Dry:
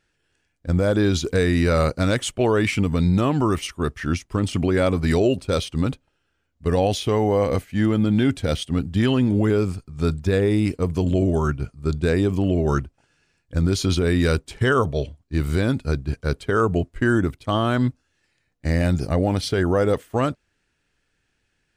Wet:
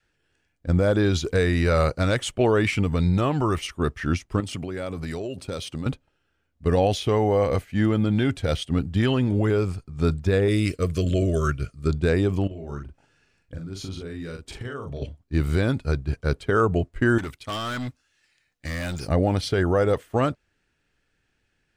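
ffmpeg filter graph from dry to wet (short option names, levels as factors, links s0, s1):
-filter_complex "[0:a]asettb=1/sr,asplit=3[s0][s1][s2];[s0]atrim=end=4.404[s3];[s1]atrim=start=4.4:end=5.86,asetpts=PTS-STARTPTS,afade=t=in:d=0.004:c=qsin,afade=t=out:st=1.456:d=0.004:c=qsin,highpass=80,highshelf=f=5500:g=6.5,acompressor=threshold=0.0447:ratio=5:attack=3.2:release=140:knee=1:detection=peak[s4];[s2]atrim=start=5.856[s5];[s3][s4]acrossfade=d=0.004:c1=hsin:c2=qsin[s6];[s6][s5]acrossfade=d=0.004:c1=qsin:c2=hsin,asettb=1/sr,asplit=3[s7][s8][s9];[s7]atrim=end=10.484[s10];[s8]atrim=start=10.48:end=11.88,asetpts=PTS-STARTPTS,afade=t=in:d=0.004:c=qsin,afade=t=out:st=1.396:d=0.004:c=qsin,asuperstop=centerf=850:order=8:qfactor=2.2,highshelf=f=2400:g=8.5[s11];[s9]atrim=start=11.876[s12];[s10][s11]acrossfade=d=0.004:c1=hsin:c2=qsin[s13];[s13][s12]acrossfade=d=0.004:c1=qsin:c2=hsin,asettb=1/sr,asplit=3[s14][s15][s16];[s14]atrim=end=12.474[s17];[s15]atrim=start=12.47:end=15.02,asetpts=PTS-STARTPTS,afade=t=in:d=0.004:c=qsin,afade=t=out:st=2.546:d=0.004:c=qsin,acompressor=threshold=0.0282:ratio=12:attack=3.2:release=140:knee=1:detection=peak,asplit=2[s18][s19];[s19]adelay=42,volume=0.631[s20];[s18][s20]amix=inputs=2:normalize=0,atrim=end_sample=112455[s21];[s16]atrim=start=15.016[s22];[s17][s21]acrossfade=d=0.004:c1=hsin:c2=qsin[s23];[s23][s22]acrossfade=d=0.004:c1=qsin:c2=hsin,asettb=1/sr,asplit=3[s24][s25][s26];[s24]atrim=end=17.184[s27];[s25]atrim=start=17.18:end=19.08,asetpts=PTS-STARTPTS,afade=t=in:d=0.004:c=qsin,afade=t=out:st=1.896:d=0.004:c=qsin,tiltshelf=f=1100:g=-7.5,asoftclip=type=hard:threshold=0.0501[s28];[s26]atrim=start=19.076[s29];[s27][s28]acrossfade=d=0.004:c1=hsin:c2=qsin[s30];[s30][s29]acrossfade=d=0.004:c1=qsin:c2=hsin,highshelf=f=4700:g=-5.5,bandreject=f=1000:w=29,adynamicequalizer=threshold=0.02:dfrequency=240:dqfactor=1.3:tfrequency=240:tqfactor=1.3:attack=5:release=100:ratio=0.375:range=3.5:mode=cutabove:tftype=bell"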